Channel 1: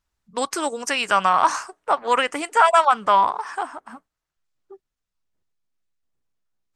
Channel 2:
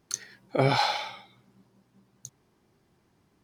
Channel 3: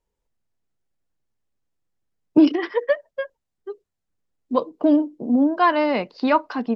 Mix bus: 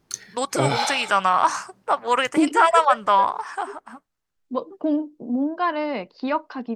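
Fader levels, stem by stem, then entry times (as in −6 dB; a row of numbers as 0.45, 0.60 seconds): −1.0, +1.5, −5.5 decibels; 0.00, 0.00, 0.00 seconds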